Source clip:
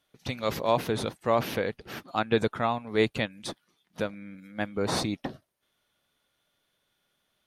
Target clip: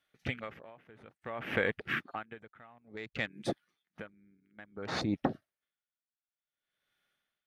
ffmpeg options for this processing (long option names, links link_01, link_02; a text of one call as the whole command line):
ffmpeg -i in.wav -af "equalizer=frequency=1800:width=0.95:gain=9.5,afwtdn=0.0224,acompressor=threshold=-31dB:ratio=5,bandreject=frequency=1000:width=9.3,aeval=exprs='val(0)*pow(10,-28*(0.5-0.5*cos(2*PI*0.57*n/s))/20)':channel_layout=same,volume=7dB" out.wav